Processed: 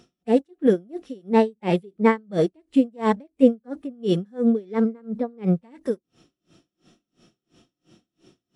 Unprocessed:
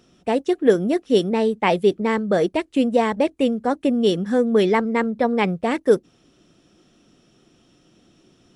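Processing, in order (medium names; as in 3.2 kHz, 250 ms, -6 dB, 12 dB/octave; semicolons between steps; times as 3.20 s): harmonic-percussive split percussive -17 dB; logarithmic tremolo 2.9 Hz, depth 34 dB; trim +6.5 dB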